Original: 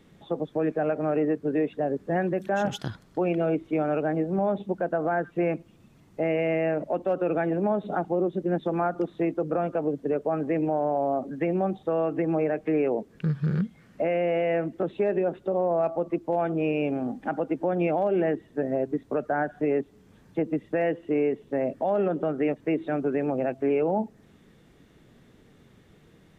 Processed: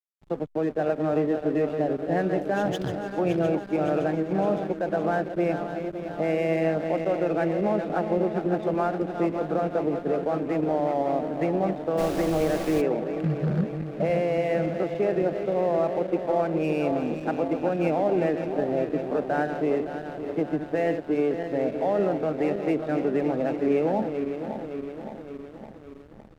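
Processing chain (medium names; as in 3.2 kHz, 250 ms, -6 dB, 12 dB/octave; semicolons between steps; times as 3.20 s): backward echo that repeats 282 ms, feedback 78%, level -8 dB; 11.97–12.80 s: added noise pink -36 dBFS; hysteresis with a dead band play -36.5 dBFS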